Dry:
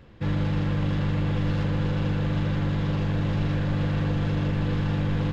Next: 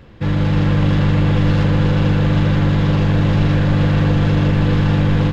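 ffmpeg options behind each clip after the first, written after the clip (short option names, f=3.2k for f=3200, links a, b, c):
-af "dynaudnorm=f=310:g=3:m=3dB,volume=7.5dB"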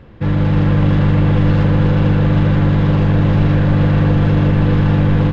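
-af "highshelf=f=3.6k:g=-12,volume=2dB"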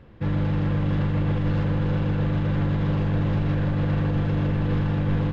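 -af "alimiter=limit=-7dB:level=0:latency=1,volume=-8dB"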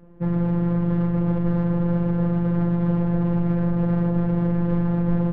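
-af "afftfilt=real='hypot(re,im)*cos(PI*b)':imag='0':win_size=1024:overlap=0.75,adynamicsmooth=sensitivity=0.5:basefreq=1.1k,volume=5.5dB"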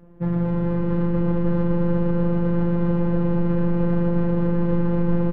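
-af "aecho=1:1:240|432|585.6|708.5|806.8:0.631|0.398|0.251|0.158|0.1"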